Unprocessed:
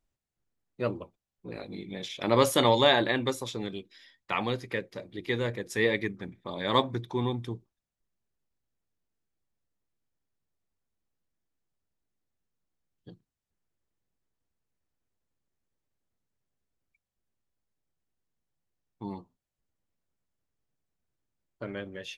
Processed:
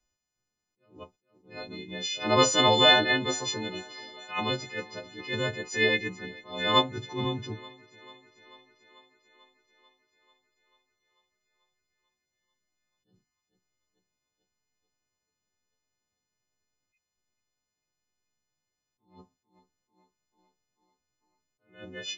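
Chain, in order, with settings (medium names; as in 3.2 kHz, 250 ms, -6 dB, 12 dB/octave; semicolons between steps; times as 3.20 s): partials quantised in pitch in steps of 3 st; resampled via 16 kHz; thinning echo 441 ms, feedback 69%, high-pass 200 Hz, level -22 dB; attacks held to a fixed rise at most 160 dB/s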